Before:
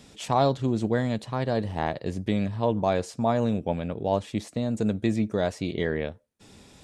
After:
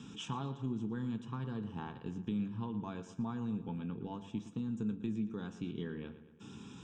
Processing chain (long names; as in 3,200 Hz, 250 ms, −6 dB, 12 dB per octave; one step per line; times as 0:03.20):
high-pass filter 140 Hz 12 dB per octave
low-shelf EQ 340 Hz +6.5 dB
notch filter 740 Hz, Q 12
downward compressor 2.5 to 1, threshold −43 dBFS, peak gain reduction 18 dB
high-frequency loss of the air 87 metres
phaser with its sweep stopped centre 3,000 Hz, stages 8
feedback echo with a low-pass in the loop 115 ms, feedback 56%, low-pass 4,800 Hz, level −13 dB
convolution reverb RT60 0.20 s, pre-delay 4 ms, DRR 9.5 dB
level +2 dB